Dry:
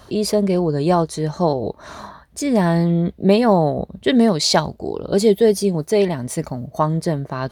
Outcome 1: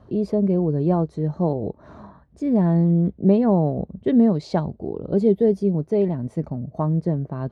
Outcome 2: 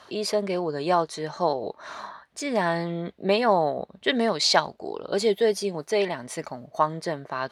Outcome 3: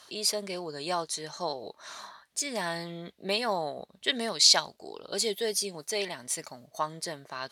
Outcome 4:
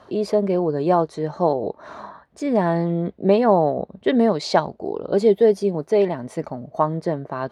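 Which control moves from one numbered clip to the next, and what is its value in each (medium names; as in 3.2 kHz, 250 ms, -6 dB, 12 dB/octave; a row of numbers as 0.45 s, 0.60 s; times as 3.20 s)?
band-pass filter, frequency: 150 Hz, 1.9 kHz, 5.9 kHz, 660 Hz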